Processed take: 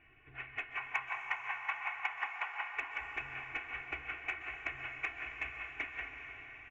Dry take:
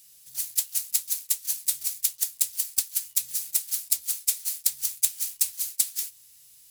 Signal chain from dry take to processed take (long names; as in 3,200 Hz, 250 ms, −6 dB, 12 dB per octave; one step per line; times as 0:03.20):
Butterworth low-pass 2,500 Hz 72 dB per octave
comb filter 2.7 ms, depth 98%
soft clipping −32 dBFS, distortion −26 dB
0:00.77–0:02.76: high-pass with resonance 920 Hz, resonance Q 6.6
feedback delay with all-pass diffusion 466 ms, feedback 49%, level −16 dB
dense smooth reverb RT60 4.6 s, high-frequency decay 0.9×, pre-delay 115 ms, DRR 4.5 dB
level +10 dB